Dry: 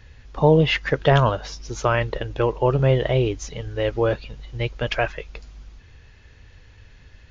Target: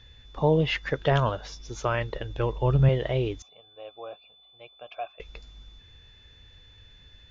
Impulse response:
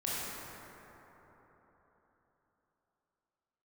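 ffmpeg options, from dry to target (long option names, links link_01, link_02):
-filter_complex "[0:a]asettb=1/sr,asplit=3[link_01][link_02][link_03];[link_01]atrim=end=3.424[link_04];[link_02]atrim=start=3.42:end=5.2,asetpts=PTS-STARTPTS,afade=type=in:duration=0.004:curve=qsin,afade=type=out:start_time=1.776:duration=0.004:curve=qsin,asplit=3[link_05][link_06][link_07];[link_05]bandpass=frequency=730:width_type=q:width=8,volume=0dB[link_08];[link_06]bandpass=frequency=1090:width_type=q:width=8,volume=-6dB[link_09];[link_07]bandpass=frequency=2440:width_type=q:width=8,volume=-9dB[link_10];[link_08][link_09][link_10]amix=inputs=3:normalize=0[link_11];[link_03]atrim=start=5.196[link_12];[link_04][link_11]acrossfade=duration=0.004:curve1=hsin:curve2=qsin[link_13];[link_13][link_12]acrossfade=duration=0.004:curve1=qsin:curve2=hsin,aeval=exprs='val(0)+0.00398*sin(2*PI*3500*n/s)':channel_layout=same,asettb=1/sr,asplit=3[link_14][link_15][link_16];[link_14]atrim=end=2.194[link_17];[link_15]atrim=start=2.19:end=2.89,asetpts=PTS-STARTPTS,afade=type=in:duration=0.004:curve=qsin,afade=type=out:start_time=0.696:duration=0.004:curve=qsin,asubboost=boost=11.5:cutoff=210[link_18];[link_16]atrim=start=2.886[link_19];[link_17][link_18]acrossfade=duration=0.004:curve1=hsin:curve2=qsin[link_20];[link_20][link_19]acrossfade=duration=0.004:curve1=qsin:curve2=hsin,volume=-6.5dB"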